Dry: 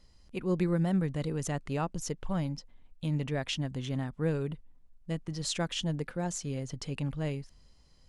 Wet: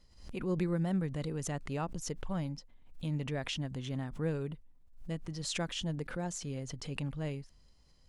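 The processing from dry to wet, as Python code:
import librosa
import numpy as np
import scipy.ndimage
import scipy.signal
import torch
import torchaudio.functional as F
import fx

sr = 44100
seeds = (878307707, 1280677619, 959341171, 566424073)

y = fx.pre_swell(x, sr, db_per_s=98.0)
y = y * librosa.db_to_amplitude(-4.0)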